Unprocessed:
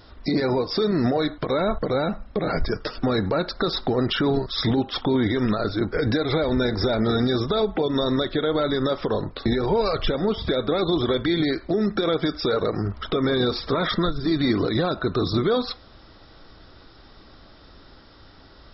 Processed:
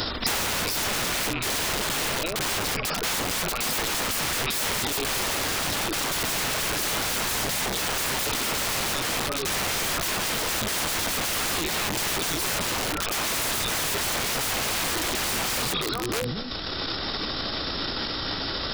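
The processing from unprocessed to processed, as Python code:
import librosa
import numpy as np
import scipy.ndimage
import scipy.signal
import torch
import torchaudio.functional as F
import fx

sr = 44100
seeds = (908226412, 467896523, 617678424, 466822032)

p1 = fx.rattle_buzz(x, sr, strikes_db=-28.0, level_db=-24.0)
p2 = fx.highpass(p1, sr, hz=63.0, slope=6, at=(4.03, 4.98))
p3 = p2 + fx.echo_stepped(p2, sr, ms=219, hz=2800.0, octaves=-1.4, feedback_pct=70, wet_db=-4, dry=0)
p4 = (np.mod(10.0 ** (26.0 / 20.0) * p3 + 1.0, 2.0) - 1.0) / 10.0 ** (26.0 / 20.0)
p5 = fx.transient(p4, sr, attack_db=-5, sustain_db=10)
p6 = fx.band_squash(p5, sr, depth_pct=100)
y = p6 * 10.0 ** (3.5 / 20.0)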